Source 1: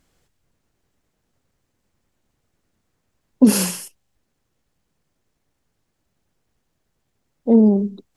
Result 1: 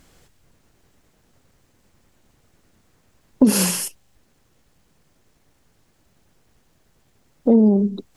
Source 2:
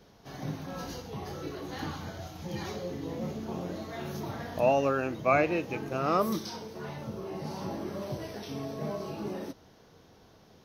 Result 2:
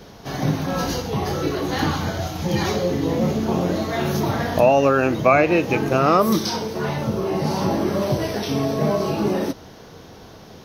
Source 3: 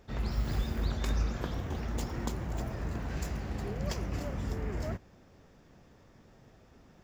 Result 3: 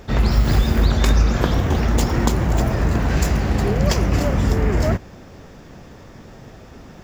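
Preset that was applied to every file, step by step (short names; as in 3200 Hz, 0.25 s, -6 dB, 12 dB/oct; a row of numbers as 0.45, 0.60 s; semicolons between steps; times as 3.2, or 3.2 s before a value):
compressor 2.5:1, threshold -29 dBFS; normalise peaks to -3 dBFS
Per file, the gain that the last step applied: +11.0, +15.0, +17.5 dB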